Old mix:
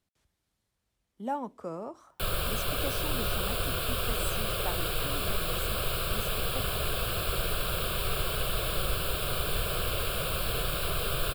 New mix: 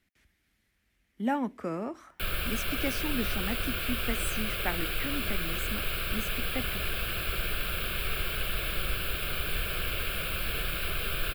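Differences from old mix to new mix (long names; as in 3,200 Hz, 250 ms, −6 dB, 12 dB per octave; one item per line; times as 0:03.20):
speech +8.5 dB
master: add graphic EQ with 10 bands 125 Hz −7 dB, 250 Hz +3 dB, 500 Hz −6 dB, 1,000 Hz −9 dB, 2,000 Hz +10 dB, 4,000 Hz −4 dB, 8,000 Hz −6 dB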